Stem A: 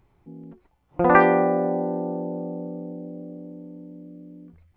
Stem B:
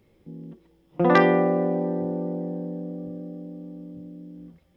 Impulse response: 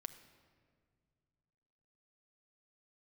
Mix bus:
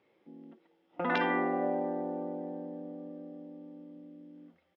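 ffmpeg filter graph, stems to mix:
-filter_complex "[0:a]volume=-13.5dB[a];[1:a]highpass=f=670:p=1,adelay=0.7,volume=-1dB[b];[a][b]amix=inputs=2:normalize=0,highpass=220,lowpass=3k,afftfilt=real='re*lt(hypot(re,im),0.282)':imag='im*lt(hypot(re,im),0.282)':win_size=1024:overlap=0.75"

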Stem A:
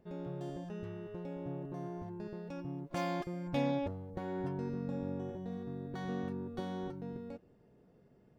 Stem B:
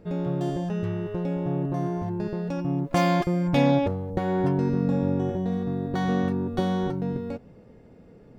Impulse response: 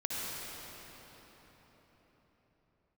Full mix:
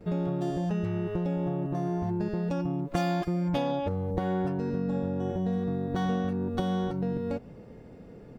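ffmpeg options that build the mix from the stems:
-filter_complex "[0:a]volume=1dB[a];[1:a]acompressor=threshold=-30dB:ratio=6,volume=-1,adelay=7.6,volume=3dB[b];[a][b]amix=inputs=2:normalize=0"

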